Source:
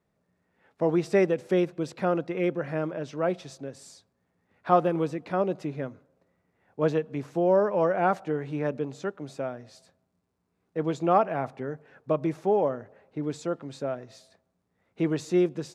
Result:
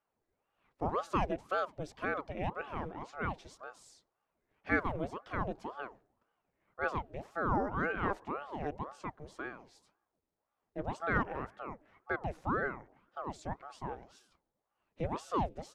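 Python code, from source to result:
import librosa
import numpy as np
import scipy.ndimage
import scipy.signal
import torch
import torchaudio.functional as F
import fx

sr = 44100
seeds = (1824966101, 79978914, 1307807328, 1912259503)

y = fx.ring_lfo(x, sr, carrier_hz=580.0, swing_pct=75, hz=1.9)
y = F.gain(torch.from_numpy(y), -7.0).numpy()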